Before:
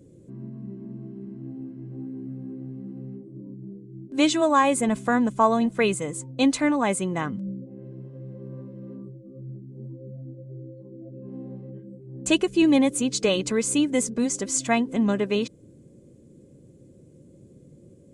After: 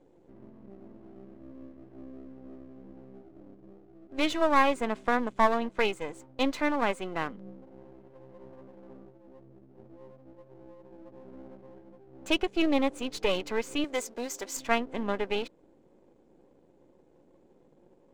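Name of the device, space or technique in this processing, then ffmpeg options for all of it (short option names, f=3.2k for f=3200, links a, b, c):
crystal radio: -filter_complex "[0:a]highpass=370,lowpass=3.4k,aeval=exprs='if(lt(val(0),0),0.251*val(0),val(0))':c=same,asettb=1/sr,asplit=3[a][b][c];[a]atrim=end=13.844[d];[b]atrim=start=13.84:end=14.57,asetpts=PTS-STARTPTS,afade=t=in:d=0.004:c=qsin,afade=t=out:st=0.726:d=0.004:c=qsin,bass=f=250:g=-11,treble=f=4k:g=8[e];[c]atrim=start=14.566[f];[d][e]acrossfade=d=0.004:c1=hsin:c2=qsin[g];[g][f]acrossfade=d=0.004:c1=qsin:c2=hsin"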